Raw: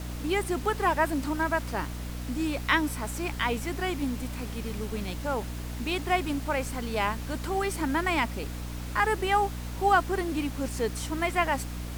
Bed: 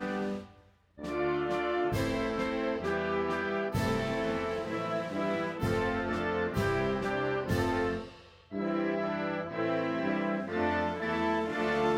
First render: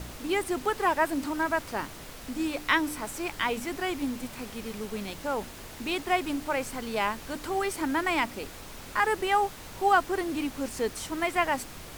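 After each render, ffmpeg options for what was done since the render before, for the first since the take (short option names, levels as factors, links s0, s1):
-af "bandreject=f=60:t=h:w=4,bandreject=f=120:t=h:w=4,bandreject=f=180:t=h:w=4,bandreject=f=240:t=h:w=4,bandreject=f=300:t=h:w=4"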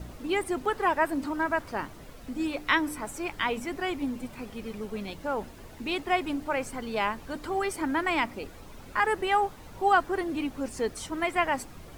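-af "afftdn=nr=10:nf=-44"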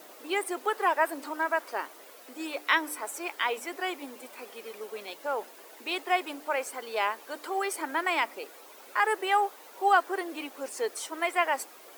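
-af "highpass=f=390:w=0.5412,highpass=f=390:w=1.3066,highshelf=f=12000:g=11.5"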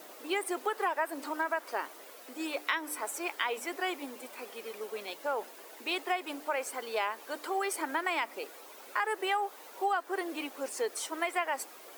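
-af "acompressor=threshold=0.0447:ratio=6"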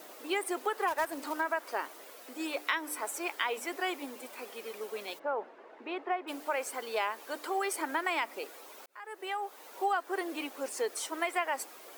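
-filter_complex "[0:a]asplit=3[s0][s1][s2];[s0]afade=t=out:st=0.87:d=0.02[s3];[s1]acrusher=bits=3:mode=log:mix=0:aa=0.000001,afade=t=in:st=0.87:d=0.02,afade=t=out:st=1.39:d=0.02[s4];[s2]afade=t=in:st=1.39:d=0.02[s5];[s3][s4][s5]amix=inputs=3:normalize=0,asplit=3[s6][s7][s8];[s6]afade=t=out:st=5.18:d=0.02[s9];[s7]lowpass=1600,afade=t=in:st=5.18:d=0.02,afade=t=out:st=6.27:d=0.02[s10];[s8]afade=t=in:st=6.27:d=0.02[s11];[s9][s10][s11]amix=inputs=3:normalize=0,asplit=2[s12][s13];[s12]atrim=end=8.86,asetpts=PTS-STARTPTS,afade=t=out:st=8.856:d=0.004:c=hsin[s14];[s13]atrim=start=8.86,asetpts=PTS-STARTPTS,afade=t=in:d=0.9[s15];[s14][s15]concat=n=2:v=0:a=1"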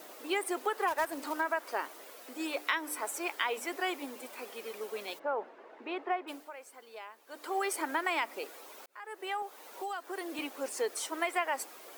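-filter_complex "[0:a]asettb=1/sr,asplit=3[s0][s1][s2];[s0]atrim=end=9.424[s3];[s1]atrim=start=9.42:end=10.39,asetpts=PTS-STARTPTS,afade=t=in:d=0.004:c=qsin,afade=t=out:st=0.966:d=0.004:c=qsin,acrossover=split=160|3000[s4][s5][s6];[s5]acompressor=threshold=0.0141:ratio=3:attack=3.2:release=140:knee=2.83:detection=peak[s7];[s4][s7][s6]amix=inputs=3:normalize=0[s8];[s2]atrim=start=10.386[s9];[s3][s8]acrossfade=d=0.004:c1=hsin:c2=qsin[s10];[s10][s9]acrossfade=d=0.004:c1=qsin:c2=hsin,asplit=3[s11][s12][s13];[s11]atrim=end=6.51,asetpts=PTS-STARTPTS,afade=t=out:st=6.18:d=0.33:silence=0.188365[s14];[s12]atrim=start=6.51:end=7.26,asetpts=PTS-STARTPTS,volume=0.188[s15];[s13]atrim=start=7.26,asetpts=PTS-STARTPTS,afade=t=in:d=0.33:silence=0.188365[s16];[s14][s15][s16]concat=n=3:v=0:a=1"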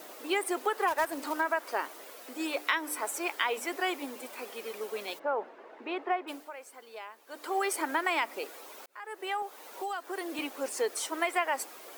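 -af "volume=1.33"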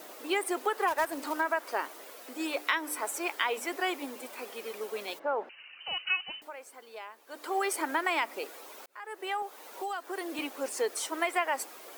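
-filter_complex "[0:a]asettb=1/sr,asplit=3[s0][s1][s2];[s0]atrim=end=5.494[s3];[s1]atrim=start=5.49:end=6.42,asetpts=PTS-STARTPTS,afade=t=in:d=0.004:c=qsin,afade=t=out:st=0.926:d=0.004:c=qsin,lowpass=f=2800:t=q:w=0.5098,lowpass=f=2800:t=q:w=0.6013,lowpass=f=2800:t=q:w=0.9,lowpass=f=2800:t=q:w=2.563,afreqshift=-3300[s4];[s2]atrim=start=6.416[s5];[s3][s4]acrossfade=d=0.004:c1=hsin:c2=qsin[s6];[s6][s5]acrossfade=d=0.004:c1=qsin:c2=hsin"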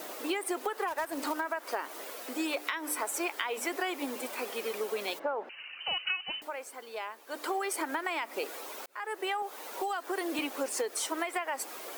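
-filter_complex "[0:a]asplit=2[s0][s1];[s1]alimiter=limit=0.0891:level=0:latency=1:release=170,volume=0.841[s2];[s0][s2]amix=inputs=2:normalize=0,acompressor=threshold=0.0355:ratio=10"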